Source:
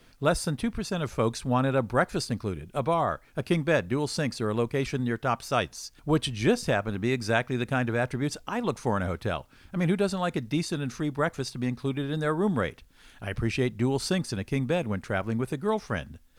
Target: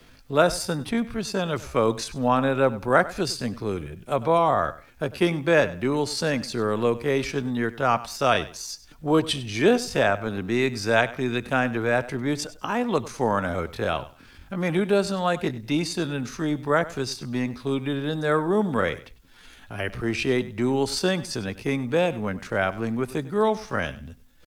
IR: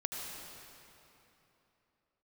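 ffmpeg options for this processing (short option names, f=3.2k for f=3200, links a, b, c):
-filter_complex "[0:a]equalizer=f=9.1k:t=o:w=0.33:g=-3.5,acrossover=split=220|840[a][b][c];[a]asoftclip=type=tanh:threshold=-39dB[d];[d][b][c]amix=inputs=3:normalize=0,atempo=0.67,aecho=1:1:99|198:0.133|0.028,volume=5dB"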